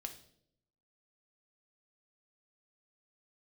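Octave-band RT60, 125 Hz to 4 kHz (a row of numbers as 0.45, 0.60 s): 1.0, 0.95, 0.85, 0.55, 0.50, 0.55 s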